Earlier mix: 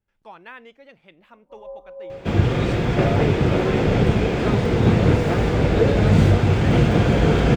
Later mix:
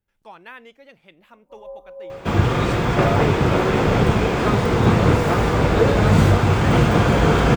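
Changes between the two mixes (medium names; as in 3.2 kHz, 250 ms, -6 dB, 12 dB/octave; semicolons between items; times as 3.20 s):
second sound: add peaking EQ 1.1 kHz +9 dB 0.97 oct; master: add treble shelf 7.1 kHz +11.5 dB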